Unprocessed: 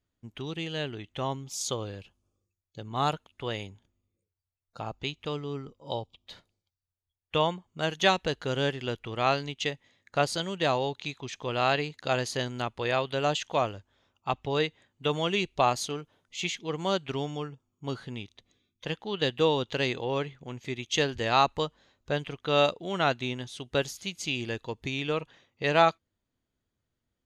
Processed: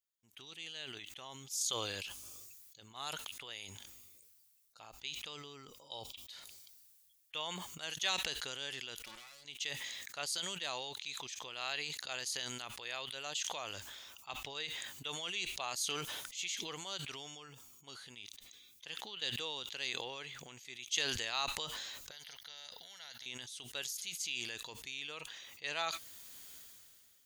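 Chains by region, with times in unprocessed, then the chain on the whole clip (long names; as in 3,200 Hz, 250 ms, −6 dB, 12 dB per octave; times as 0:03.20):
0:09.04–0:09.45: lower of the sound and its delayed copy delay 5.5 ms + comb filter 3.5 ms, depth 33% + output level in coarse steps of 24 dB
0:22.11–0:23.26: downward compressor 2.5 to 1, threshold −34 dBFS + phaser with its sweep stopped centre 1,700 Hz, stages 8 + every bin compressed towards the loudest bin 2 to 1
whole clip: first-order pre-emphasis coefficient 0.97; level that may fall only so fast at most 24 dB per second; level −1 dB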